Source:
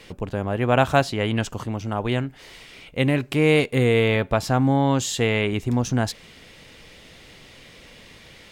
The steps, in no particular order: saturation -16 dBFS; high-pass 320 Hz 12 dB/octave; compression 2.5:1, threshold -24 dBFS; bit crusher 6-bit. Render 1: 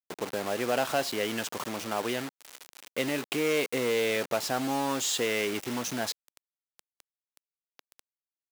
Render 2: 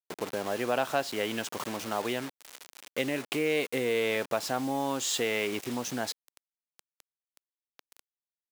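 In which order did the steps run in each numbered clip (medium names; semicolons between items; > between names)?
saturation > compression > bit crusher > high-pass; bit crusher > compression > saturation > high-pass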